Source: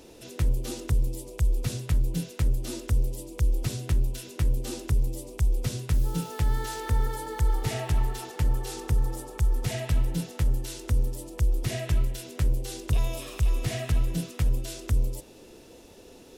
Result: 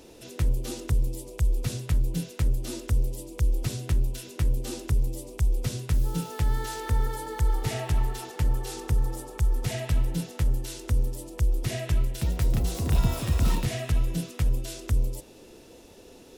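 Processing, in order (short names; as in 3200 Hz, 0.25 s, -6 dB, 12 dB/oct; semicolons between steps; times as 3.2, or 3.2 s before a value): 11.89–13.93 echoes that change speed 0.323 s, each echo +6 st, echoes 3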